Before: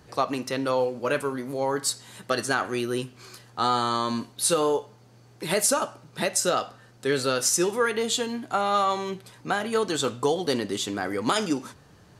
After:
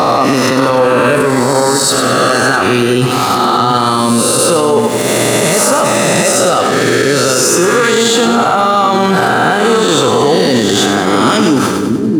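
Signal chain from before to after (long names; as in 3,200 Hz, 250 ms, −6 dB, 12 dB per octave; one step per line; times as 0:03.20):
peak hold with a rise ahead of every peak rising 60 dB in 1.48 s
leveller curve on the samples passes 2
reversed playback
downward compressor, threshold −23 dBFS, peak gain reduction 13.5 dB
reversed playback
high-pass filter 110 Hz
bass and treble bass +7 dB, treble −3 dB
on a send: echo with a time of its own for lows and highs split 380 Hz, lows 669 ms, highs 98 ms, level −7 dB
on the sum: boost into a limiter +20.5 dB
level −1 dB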